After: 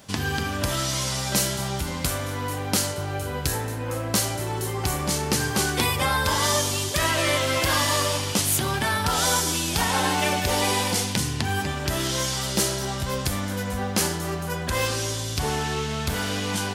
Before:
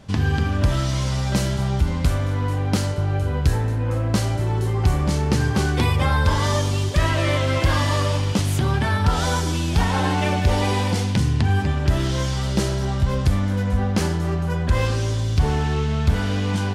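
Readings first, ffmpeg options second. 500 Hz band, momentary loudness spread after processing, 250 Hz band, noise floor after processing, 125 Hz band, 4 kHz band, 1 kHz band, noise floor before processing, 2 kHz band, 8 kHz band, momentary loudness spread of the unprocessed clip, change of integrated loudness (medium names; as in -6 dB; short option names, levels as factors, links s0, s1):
-1.5 dB, 7 LU, -5.0 dB, -30 dBFS, -9.5 dB, +4.0 dB, 0.0 dB, -23 dBFS, +1.0 dB, +9.0 dB, 3 LU, -2.5 dB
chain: -af "aemphasis=mode=production:type=bsi"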